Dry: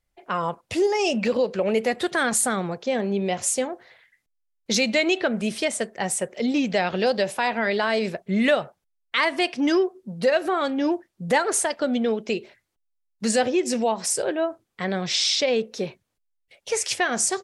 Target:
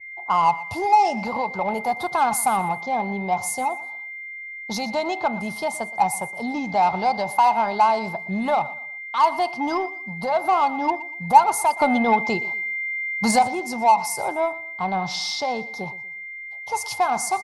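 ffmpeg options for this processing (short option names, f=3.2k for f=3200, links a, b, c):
-filter_complex "[0:a]firequalizer=gain_entry='entry(130,0);entry(220,-7);entry(500,-13);entry(840,15);entry(1900,-24);entry(4400,-9);entry(7700,-17);entry(13000,5)':delay=0.05:min_phase=1,aeval=exprs='val(0)+0.0126*sin(2*PI*2100*n/s)':c=same,asplit=2[a][b];[b]asoftclip=type=tanh:threshold=-23.5dB,volume=-4dB[c];[a][c]amix=inputs=2:normalize=0,asettb=1/sr,asplit=3[d][e][f];[d]atrim=end=11.804[g];[e]atrim=start=11.8:end=13.39,asetpts=PTS-STARTPTS,afade=t=in:d=0.004:c=qsin,afade=t=out:st=1.586:d=0.004:c=qsin,acontrast=89[h];[f]atrim=start=13.386[i];[g][h]acrossfade=d=0.004:c1=hsin:c2=qsin[j];[j][i]acrossfade=d=0.004:c1=qsin:c2=hsin,asplit=2[k][l];[l]aecho=0:1:120|240|360:0.126|0.0428|0.0146[m];[k][m]amix=inputs=2:normalize=0,adynamicequalizer=threshold=0.0282:dfrequency=2400:dqfactor=0.7:tfrequency=2400:tqfactor=0.7:attack=5:release=100:ratio=0.375:range=2:mode=boostabove:tftype=highshelf,volume=-1dB"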